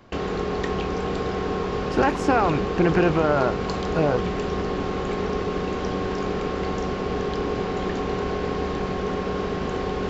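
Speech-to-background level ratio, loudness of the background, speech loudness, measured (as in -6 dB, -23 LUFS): 3.5 dB, -27.0 LUFS, -23.5 LUFS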